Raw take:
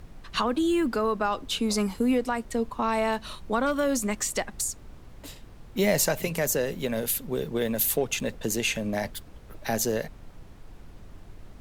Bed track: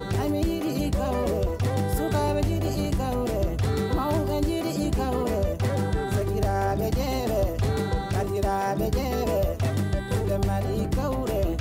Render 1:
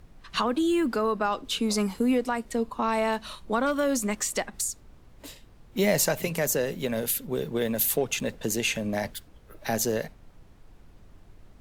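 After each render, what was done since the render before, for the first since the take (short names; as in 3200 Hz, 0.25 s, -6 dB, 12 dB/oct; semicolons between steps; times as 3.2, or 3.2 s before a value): noise print and reduce 6 dB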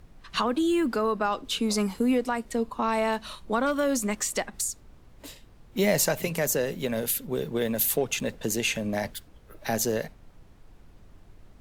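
nothing audible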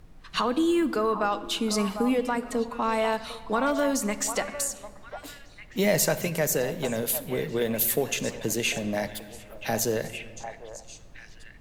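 delay with a stepping band-pass 0.749 s, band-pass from 850 Hz, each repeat 1.4 oct, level -6.5 dB; shoebox room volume 2700 m³, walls mixed, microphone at 0.52 m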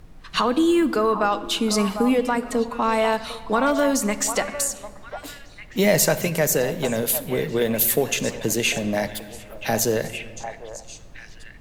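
gain +5 dB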